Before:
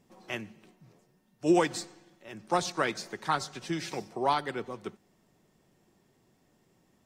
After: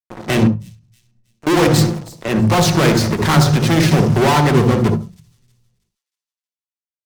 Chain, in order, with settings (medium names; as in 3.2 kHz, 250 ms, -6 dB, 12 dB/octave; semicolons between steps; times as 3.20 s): tone controls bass +1 dB, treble -6 dB; in parallel at -0.5 dB: level held to a coarse grid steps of 10 dB; on the sum: bass shelf 300 Hz +10.5 dB; 0.47–1.47 s: compression 8:1, threshold -51 dBFS, peak gain reduction 29.5 dB; fuzz box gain 36 dB, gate -44 dBFS; feedback echo behind a high-pass 319 ms, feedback 33%, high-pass 5.4 kHz, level -16.5 dB; on a send at -8 dB: reverberation RT60 0.30 s, pre-delay 57 ms; on the sum: endings held to a fixed fall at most 150 dB/s